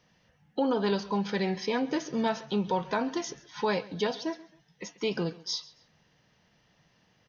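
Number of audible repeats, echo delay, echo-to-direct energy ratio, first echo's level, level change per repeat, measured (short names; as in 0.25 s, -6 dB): 2, 0.135 s, -20.0 dB, -20.5 dB, -11.0 dB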